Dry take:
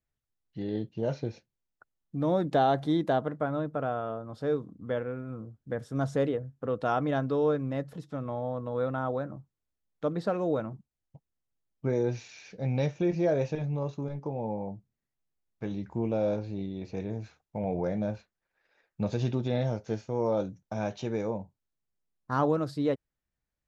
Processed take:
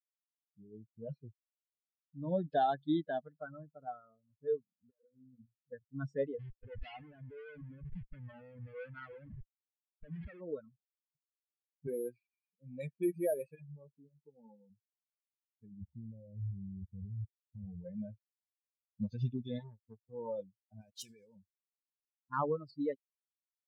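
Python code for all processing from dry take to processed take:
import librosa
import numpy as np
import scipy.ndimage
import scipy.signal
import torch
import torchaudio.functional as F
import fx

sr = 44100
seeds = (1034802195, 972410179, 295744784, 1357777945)

y = fx.chain(x, sr, fx.hum_notches(base_hz=60, count=9),
    fx.over_compress(threshold_db=-39.0, ratio=-1.0),
    fx.doppler_dist(depth_ms=0.19), at=(4.9, 5.46))
y = fx.chain(y, sr, fx.schmitt(flips_db=-44.5),
    fx.lowpass(hz=3600.0, slope=12), at=(6.39, 10.41))
y = fx.chain(y, sr, fx.highpass(hz=170.0, slope=12),
    fx.resample_bad(factor=4, down='filtered', up='hold'), at=(11.87, 14.7))
y = fx.chain(y, sr, fx.tilt_eq(slope=-3.5),
    fx.level_steps(step_db=16), at=(15.81, 17.85))
y = fx.chain(y, sr, fx.transient(attack_db=2, sustain_db=-9),
    fx.transformer_sat(knee_hz=650.0), at=(19.59, 20.13))
y = fx.chain(y, sr, fx.crossing_spikes(level_db=-30.0),
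    fx.high_shelf(hz=2500.0, db=10.0),
    fx.level_steps(step_db=17), at=(20.81, 21.36))
y = fx.bin_expand(y, sr, power=3.0)
y = fx.env_lowpass(y, sr, base_hz=320.0, full_db=-32.5)
y = y * 10.0 ** (-1.5 / 20.0)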